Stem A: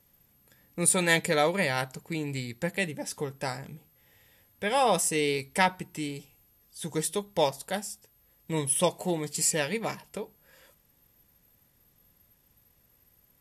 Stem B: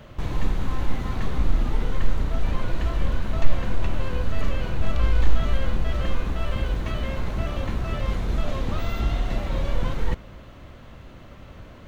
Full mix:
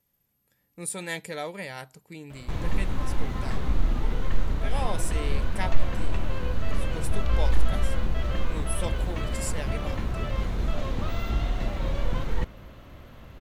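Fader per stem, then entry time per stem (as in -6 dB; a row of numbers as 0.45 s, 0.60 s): -9.5 dB, -2.5 dB; 0.00 s, 2.30 s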